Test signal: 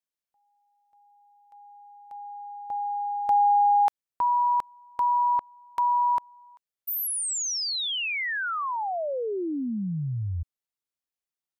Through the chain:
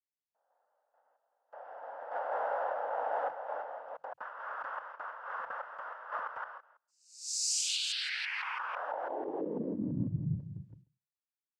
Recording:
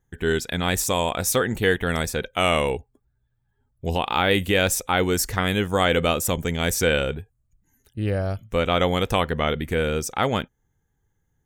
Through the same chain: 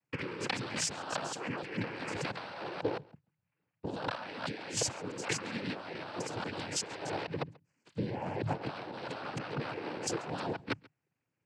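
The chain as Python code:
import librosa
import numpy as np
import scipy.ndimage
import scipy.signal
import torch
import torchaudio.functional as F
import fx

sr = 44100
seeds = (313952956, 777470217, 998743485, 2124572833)

y = fx.reverse_delay(x, sr, ms=165, wet_db=-2.5)
y = fx.hum_notches(y, sr, base_hz=50, count=3)
y = fx.gate_hold(y, sr, open_db=-48.0, close_db=-50.0, hold_ms=19.0, range_db=-13, attack_ms=0.1, release_ms=35.0)
y = fx.lowpass(y, sr, hz=2600.0, slope=6)
y = fx.low_shelf(y, sr, hz=450.0, db=-5.5)
y = fx.over_compress(y, sr, threshold_db=-35.0, ratio=-1.0)
y = fx.noise_vocoder(y, sr, seeds[0], bands=8)
y = y + 10.0 ** (-24.0 / 20.0) * np.pad(y, (int(137 * sr / 1000.0), 0))[:len(y)]
y = F.gain(torch.from_numpy(y), -2.5).numpy()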